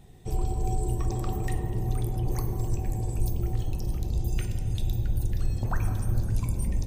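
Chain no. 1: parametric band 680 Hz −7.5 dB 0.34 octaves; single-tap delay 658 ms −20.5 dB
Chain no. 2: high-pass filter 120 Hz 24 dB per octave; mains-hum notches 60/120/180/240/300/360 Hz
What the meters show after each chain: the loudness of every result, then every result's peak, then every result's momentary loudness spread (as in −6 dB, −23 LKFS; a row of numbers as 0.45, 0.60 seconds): −30.5, −37.0 LKFS; −14.5, −19.5 dBFS; 2, 3 LU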